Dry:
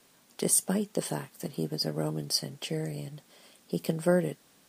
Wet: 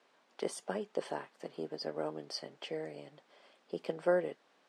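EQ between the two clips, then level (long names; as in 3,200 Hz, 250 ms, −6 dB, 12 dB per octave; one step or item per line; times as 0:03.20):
high-pass filter 500 Hz 12 dB per octave
head-to-tape spacing loss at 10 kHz 28 dB
+1.5 dB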